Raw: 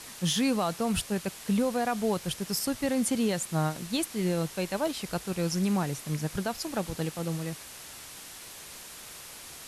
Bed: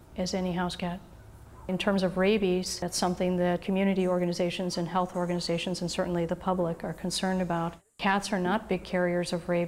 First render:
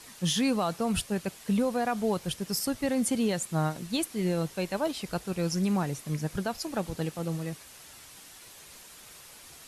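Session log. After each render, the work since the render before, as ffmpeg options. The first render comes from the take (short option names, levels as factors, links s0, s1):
-af "afftdn=nr=6:nf=-45"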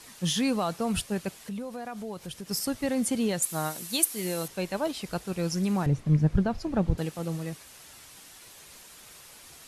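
-filter_complex "[0:a]asettb=1/sr,asplit=3[s0][s1][s2];[s0]atrim=end=1.444[s3];[s1]atrim=start=1.44:end=2.51,asetpts=PTS-STARTPTS,afade=t=in:d=0.004:c=qsin,afade=t=out:st=1.066:d=0.004:c=qsin,acompressor=threshold=0.0141:ratio=2.5:attack=3.2:release=140:knee=1:detection=peak[s4];[s2]atrim=start=2.506[s5];[s3][s4]acrossfade=d=0.004:c1=hsin:c2=qsin[s6];[s6][s5]acrossfade=d=0.004:c1=qsin:c2=hsin,asettb=1/sr,asplit=3[s7][s8][s9];[s7]atrim=end=3.424[s10];[s8]atrim=start=3.42:end=4.48,asetpts=PTS-STARTPTS,afade=t=in:d=0.004:c=qsin,afade=t=out:st=1.056:d=0.004:c=qsin,aemphasis=mode=production:type=bsi[s11];[s9]atrim=start=4.476[s12];[s10][s11]acrossfade=d=0.004:c1=hsin:c2=qsin[s13];[s13][s12]acrossfade=d=0.004:c1=qsin:c2=hsin,asettb=1/sr,asplit=3[s14][s15][s16];[s14]atrim=end=5.864[s17];[s15]atrim=start=5.86:end=6.98,asetpts=PTS-STARTPTS,afade=t=in:d=0.004:c=qsin,afade=t=out:st=1.116:d=0.004:c=qsin,aemphasis=mode=reproduction:type=riaa[s18];[s16]atrim=start=6.976[s19];[s17][s18]acrossfade=d=0.004:c1=hsin:c2=qsin[s20];[s20][s19]acrossfade=d=0.004:c1=qsin:c2=hsin"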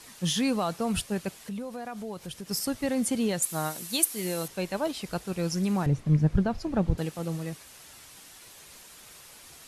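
-af anull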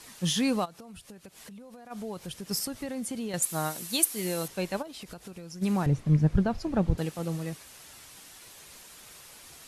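-filter_complex "[0:a]asplit=3[s0][s1][s2];[s0]afade=t=out:st=0.64:d=0.02[s3];[s1]acompressor=threshold=0.00708:ratio=16:attack=3.2:release=140:knee=1:detection=peak,afade=t=in:st=0.64:d=0.02,afade=t=out:st=1.9:d=0.02[s4];[s2]afade=t=in:st=1.9:d=0.02[s5];[s3][s4][s5]amix=inputs=3:normalize=0,asettb=1/sr,asplit=3[s6][s7][s8];[s6]atrim=end=2.654[s9];[s7]atrim=start=2.65:end=3.34,asetpts=PTS-STARTPTS,afade=t=in:d=0.004:c=qsin,afade=t=out:st=0.686:d=0.004:c=qsin,acompressor=threshold=0.0224:ratio=3:attack=3.2:release=140:knee=1:detection=peak[s10];[s8]atrim=start=3.336[s11];[s9][s10]acrossfade=d=0.004:c1=hsin:c2=qsin[s12];[s12][s11]acrossfade=d=0.004:c1=qsin:c2=hsin,asplit=3[s13][s14][s15];[s13]afade=t=out:st=4.81:d=0.02[s16];[s14]acompressor=threshold=0.0126:ratio=20:attack=3.2:release=140:knee=1:detection=peak,afade=t=in:st=4.81:d=0.02,afade=t=out:st=5.61:d=0.02[s17];[s15]afade=t=in:st=5.61:d=0.02[s18];[s16][s17][s18]amix=inputs=3:normalize=0"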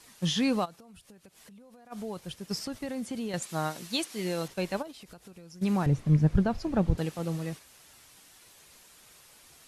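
-filter_complex "[0:a]agate=range=0.501:threshold=0.01:ratio=16:detection=peak,acrossover=split=6300[s0][s1];[s1]acompressor=threshold=0.00251:ratio=4:attack=1:release=60[s2];[s0][s2]amix=inputs=2:normalize=0"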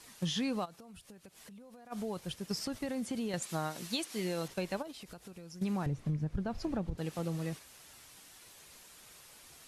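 -af "alimiter=limit=0.141:level=0:latency=1:release=276,acompressor=threshold=0.0251:ratio=4"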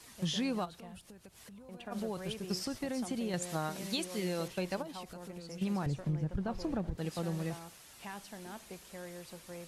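-filter_complex "[1:a]volume=0.106[s0];[0:a][s0]amix=inputs=2:normalize=0"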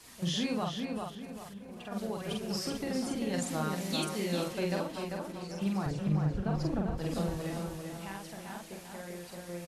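-filter_complex "[0:a]asplit=2[s0][s1];[s1]adelay=46,volume=0.75[s2];[s0][s2]amix=inputs=2:normalize=0,asplit=2[s3][s4];[s4]adelay=395,lowpass=f=3100:p=1,volume=0.631,asplit=2[s5][s6];[s6]adelay=395,lowpass=f=3100:p=1,volume=0.39,asplit=2[s7][s8];[s8]adelay=395,lowpass=f=3100:p=1,volume=0.39,asplit=2[s9][s10];[s10]adelay=395,lowpass=f=3100:p=1,volume=0.39,asplit=2[s11][s12];[s12]adelay=395,lowpass=f=3100:p=1,volume=0.39[s13];[s3][s5][s7][s9][s11][s13]amix=inputs=6:normalize=0"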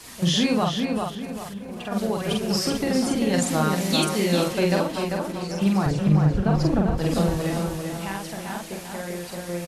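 -af "volume=3.55"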